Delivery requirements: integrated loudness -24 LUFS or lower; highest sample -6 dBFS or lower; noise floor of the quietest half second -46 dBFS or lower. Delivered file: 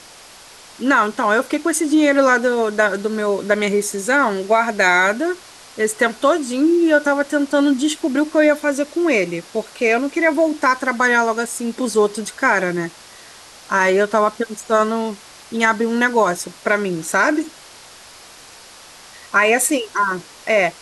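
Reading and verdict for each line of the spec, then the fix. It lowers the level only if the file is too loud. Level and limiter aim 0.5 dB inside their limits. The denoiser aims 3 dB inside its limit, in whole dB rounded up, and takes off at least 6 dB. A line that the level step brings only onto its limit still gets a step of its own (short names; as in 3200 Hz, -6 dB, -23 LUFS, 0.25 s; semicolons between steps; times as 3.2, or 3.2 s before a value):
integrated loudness -17.5 LUFS: fail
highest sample -4.0 dBFS: fail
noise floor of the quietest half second -42 dBFS: fail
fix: gain -7 dB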